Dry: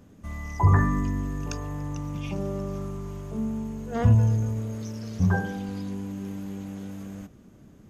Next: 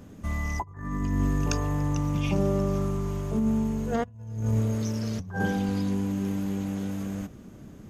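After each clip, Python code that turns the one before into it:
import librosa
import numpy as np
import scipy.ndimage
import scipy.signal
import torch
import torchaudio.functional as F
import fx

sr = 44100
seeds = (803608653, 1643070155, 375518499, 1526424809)

y = fx.over_compress(x, sr, threshold_db=-28.0, ratio=-0.5)
y = F.gain(torch.from_numpy(y), 2.5).numpy()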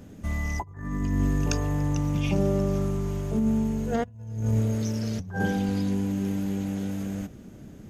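y = fx.peak_eq(x, sr, hz=1100.0, db=-6.5, octaves=0.39)
y = F.gain(torch.from_numpy(y), 1.0).numpy()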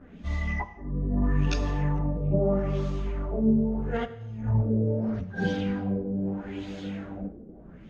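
y = fx.filter_lfo_lowpass(x, sr, shape='sine', hz=0.78, low_hz=440.0, high_hz=4200.0, q=2.4)
y = fx.chorus_voices(y, sr, voices=4, hz=0.74, base_ms=15, depth_ms=3.4, mix_pct=65)
y = fx.rev_gated(y, sr, seeds[0], gate_ms=300, shape='falling', drr_db=10.5)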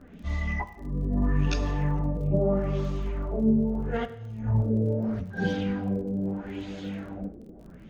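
y = fx.dmg_crackle(x, sr, seeds[1], per_s=36.0, level_db=-45.0)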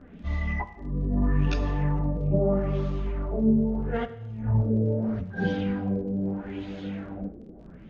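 y = fx.air_absorb(x, sr, metres=130.0)
y = F.gain(torch.from_numpy(y), 1.0).numpy()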